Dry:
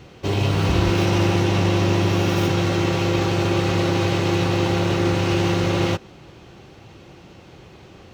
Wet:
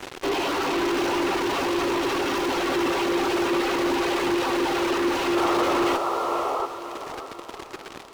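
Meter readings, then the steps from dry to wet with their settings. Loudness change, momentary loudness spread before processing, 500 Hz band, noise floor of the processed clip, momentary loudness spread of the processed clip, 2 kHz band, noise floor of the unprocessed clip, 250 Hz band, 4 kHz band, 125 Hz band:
-3.5 dB, 2 LU, -1.0 dB, -42 dBFS, 13 LU, -0.5 dB, -46 dBFS, -3.5 dB, -2.0 dB, -23.5 dB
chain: rippled Chebyshev high-pass 260 Hz, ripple 6 dB; reverb removal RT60 1.6 s; in parallel at -6 dB: fuzz box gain 54 dB, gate -48 dBFS; on the sum: painted sound noise, 5.36–6.66, 380–1400 Hz -20 dBFS; diffused feedback echo 0.58 s, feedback 45%, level -10.5 dB; slew limiter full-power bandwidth 350 Hz; gain -6.5 dB

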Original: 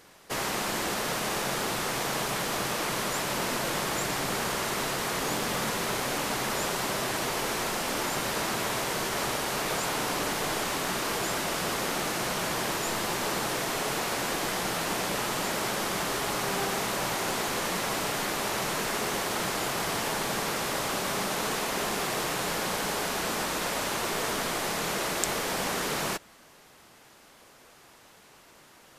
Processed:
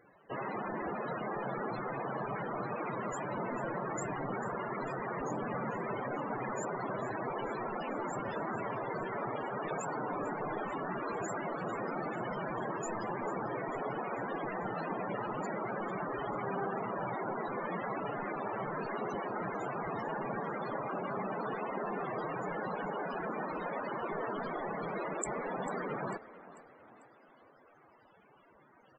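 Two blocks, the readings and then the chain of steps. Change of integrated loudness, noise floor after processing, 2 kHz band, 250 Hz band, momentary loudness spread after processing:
-8.5 dB, -62 dBFS, -10.5 dB, -4.5 dB, 1 LU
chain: loudest bins only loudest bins 32; frequency-shifting echo 0.445 s, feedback 50%, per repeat +36 Hz, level -17 dB; gain -3.5 dB

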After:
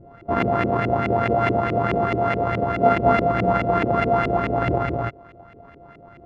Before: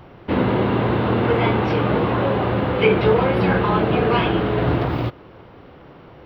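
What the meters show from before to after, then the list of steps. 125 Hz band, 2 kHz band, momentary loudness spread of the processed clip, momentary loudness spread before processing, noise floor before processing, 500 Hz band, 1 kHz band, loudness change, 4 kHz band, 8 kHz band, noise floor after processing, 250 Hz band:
-4.5 dB, -2.0 dB, 5 LU, 5 LU, -44 dBFS, -2.0 dB, +2.0 dB, -2.0 dB, -9.5 dB, n/a, -47 dBFS, -4.5 dB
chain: sample sorter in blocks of 64 samples; LFO low-pass saw up 4.7 Hz 330–2400 Hz; gain -4 dB

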